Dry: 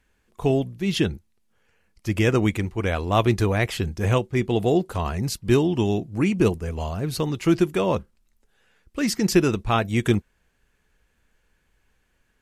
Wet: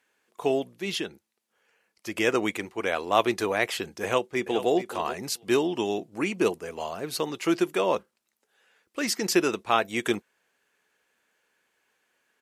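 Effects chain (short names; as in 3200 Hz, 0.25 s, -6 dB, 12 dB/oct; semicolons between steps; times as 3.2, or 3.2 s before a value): HPF 390 Hz 12 dB/oct; 0.94–2.18 compressor 2.5:1, threshold -30 dBFS, peak gain reduction 6.5 dB; 4.03–4.7 echo throw 0.43 s, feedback 10%, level -12 dB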